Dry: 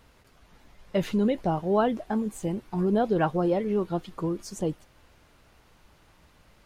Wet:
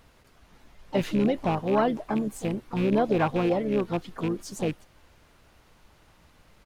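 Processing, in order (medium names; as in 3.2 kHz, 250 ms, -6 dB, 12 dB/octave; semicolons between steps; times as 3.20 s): rattle on loud lows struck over -27 dBFS, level -28 dBFS; harmony voices -7 st -15 dB, +5 st -13 dB, +7 st -15 dB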